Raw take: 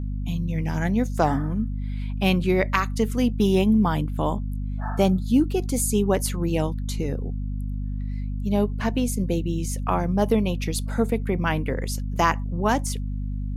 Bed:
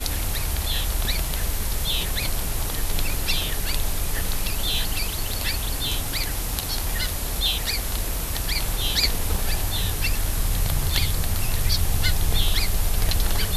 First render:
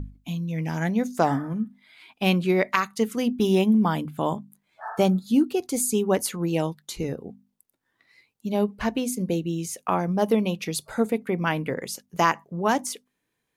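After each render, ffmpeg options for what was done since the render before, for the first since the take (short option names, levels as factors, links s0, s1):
-af "bandreject=f=50:t=h:w=6,bandreject=f=100:t=h:w=6,bandreject=f=150:t=h:w=6,bandreject=f=200:t=h:w=6,bandreject=f=250:t=h:w=6"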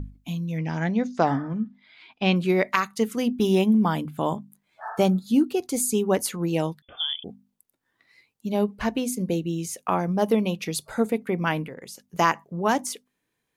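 -filter_complex "[0:a]asettb=1/sr,asplit=3[s0][s1][s2];[s0]atrim=end=0.584[s3];[s1]atrim=start=0.58:end=2.36,asetpts=PTS-STARTPTS,afade=t=in:d=0.004:c=qsin,afade=t=out:st=1.776:d=0.004:c=qsin,lowpass=f=5500:w=0.5412,lowpass=f=5500:w=1.3066[s4];[s2]atrim=start=2.356[s5];[s3][s4]acrossfade=d=0.004:c1=hsin:c2=qsin[s6];[s6][s5]acrossfade=d=0.004:c1=qsin:c2=hsin,asettb=1/sr,asplit=3[s7][s8][s9];[s7]atrim=end=6.824[s10];[s8]atrim=start=6.82:end=7.24,asetpts=PTS-STARTPTS,afade=t=in:d=0.004:c=qsin,afade=t=out:st=0.416:d=0.004:c=qsin,lowpass=f=3100:t=q:w=0.5098,lowpass=f=3100:t=q:w=0.6013,lowpass=f=3100:t=q:w=0.9,lowpass=f=3100:t=q:w=2.563,afreqshift=-3600[s11];[s9]atrim=start=7.236[s12];[s10][s11]acrossfade=d=0.004:c1=hsin:c2=qsin[s13];[s13][s12]acrossfade=d=0.004:c1=qsin:c2=hsin,asettb=1/sr,asplit=3[s14][s15][s16];[s14]atrim=end=11.664[s17];[s15]atrim=start=11.66:end=12.07,asetpts=PTS-STARTPTS,afade=t=in:d=0.004:c=qsin,afade=t=out:st=0.406:d=0.004:c=qsin,acompressor=threshold=0.01:ratio=2.5:attack=3.2:release=140:knee=1:detection=peak[s18];[s16]atrim=start=12.066[s19];[s17][s18]acrossfade=d=0.004:c1=hsin:c2=qsin[s20];[s20][s19]acrossfade=d=0.004:c1=qsin:c2=hsin"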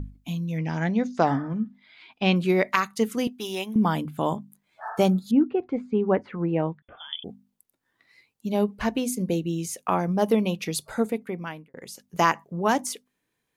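-filter_complex "[0:a]asettb=1/sr,asplit=3[s0][s1][s2];[s0]atrim=end=3.274[s3];[s1]atrim=start=3.27:end=3.76,asetpts=PTS-STARTPTS,afade=t=in:d=0.004:c=qsin,afade=t=out:st=0.486:d=0.004:c=qsin,highpass=f=1300:p=1[s4];[s2]atrim=start=3.756[s5];[s3][s4]acrossfade=d=0.004:c1=hsin:c2=qsin[s6];[s6][s5]acrossfade=d=0.004:c1=qsin:c2=hsin,asettb=1/sr,asplit=3[s7][s8][s9];[s7]atrim=end=5.314[s10];[s8]atrim=start=5.31:end=7.13,asetpts=PTS-STARTPTS,afade=t=in:d=0.004:c=qsin,afade=t=out:st=1.816:d=0.004:c=qsin,lowpass=f=2100:w=0.5412,lowpass=f=2100:w=1.3066[s11];[s9]atrim=start=7.126[s12];[s10][s11]acrossfade=d=0.004:c1=hsin:c2=qsin[s13];[s13][s12]acrossfade=d=0.004:c1=qsin:c2=hsin,asplit=2[s14][s15];[s14]atrim=end=11.74,asetpts=PTS-STARTPTS,afade=t=out:st=10.9:d=0.84[s16];[s15]atrim=start=11.74,asetpts=PTS-STARTPTS,afade=t=in:d=0.004:c=hsin[s17];[s16][s17]concat=n=2:v=0:a=1"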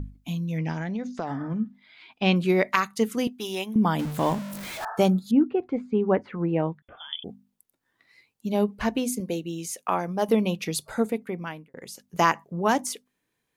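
-filter_complex "[0:a]asettb=1/sr,asplit=3[s0][s1][s2];[s0]atrim=end=0.724[s3];[s1]atrim=start=0.72:end=1.41,asetpts=PTS-STARTPTS,afade=t=in:d=0.004:c=qsin,afade=t=out:st=0.686:d=0.004:c=qsin,acompressor=threshold=0.0447:ratio=5:attack=3.2:release=140:knee=1:detection=peak[s4];[s2]atrim=start=1.406[s5];[s3][s4]acrossfade=d=0.004:c1=hsin:c2=qsin[s6];[s6][s5]acrossfade=d=0.004:c1=qsin:c2=hsin,asettb=1/sr,asplit=3[s7][s8][s9];[s7]atrim=end=3.994[s10];[s8]atrim=start=3.99:end=4.85,asetpts=PTS-STARTPTS,afade=t=in:d=0.004:c=qsin,afade=t=out:st=0.856:d=0.004:c=qsin,aeval=exprs='val(0)+0.5*0.0299*sgn(val(0))':c=same[s11];[s9]atrim=start=4.846[s12];[s10][s11]acrossfade=d=0.004:c1=hsin:c2=qsin[s13];[s13][s12]acrossfade=d=0.004:c1=qsin:c2=hsin,asettb=1/sr,asplit=3[s14][s15][s16];[s14]atrim=end=9.204[s17];[s15]atrim=start=9.2:end=10.29,asetpts=PTS-STARTPTS,afade=t=in:d=0.004:c=qsin,afade=t=out:st=1.086:d=0.004:c=qsin,lowshelf=f=260:g=-10[s18];[s16]atrim=start=10.286[s19];[s17][s18]acrossfade=d=0.004:c1=hsin:c2=qsin[s20];[s20][s19]acrossfade=d=0.004:c1=qsin:c2=hsin"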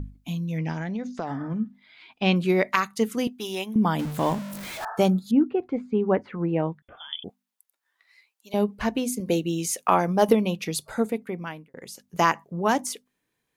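-filter_complex "[0:a]asettb=1/sr,asplit=3[s0][s1][s2];[s0]atrim=end=7.294[s3];[s1]atrim=start=7.29:end=8.54,asetpts=PTS-STARTPTS,afade=t=in:d=0.004:c=qsin,afade=t=out:st=1.246:d=0.004:c=qsin,highpass=860[s4];[s2]atrim=start=8.536[s5];[s3][s4]acrossfade=d=0.004:c1=hsin:c2=qsin[s6];[s6][s5]acrossfade=d=0.004:c1=qsin:c2=hsin,asettb=1/sr,asplit=3[s7][s8][s9];[s7]atrim=end=9.264[s10];[s8]atrim=start=9.26:end=10.33,asetpts=PTS-STARTPTS,afade=t=in:d=0.004:c=qsin,afade=t=out:st=1.066:d=0.004:c=qsin,acontrast=51[s11];[s9]atrim=start=10.326[s12];[s10][s11]acrossfade=d=0.004:c1=hsin:c2=qsin[s13];[s13][s12]acrossfade=d=0.004:c1=qsin:c2=hsin"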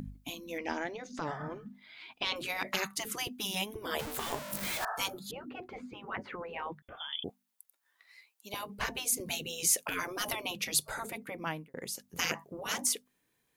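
-af "afftfilt=real='re*lt(hypot(re,im),0.141)':imag='im*lt(hypot(re,im),0.141)':win_size=1024:overlap=0.75,highshelf=f=8300:g=6"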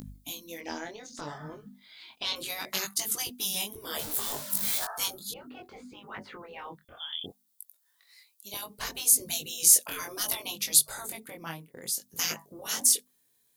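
-af "flanger=delay=19:depth=5.7:speed=0.65,aexciter=amount=3.4:drive=4.8:freq=3500"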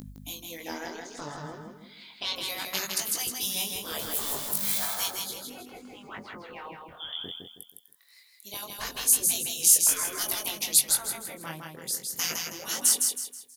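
-af "aecho=1:1:160|320|480|640:0.631|0.221|0.0773|0.0271"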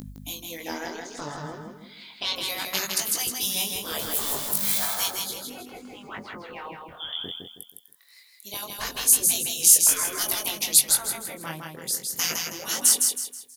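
-af "volume=1.5"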